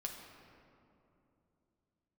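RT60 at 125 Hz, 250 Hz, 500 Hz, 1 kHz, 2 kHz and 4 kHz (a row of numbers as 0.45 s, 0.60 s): 3.9 s, 3.7 s, 3.1 s, 2.6 s, 1.9 s, 1.3 s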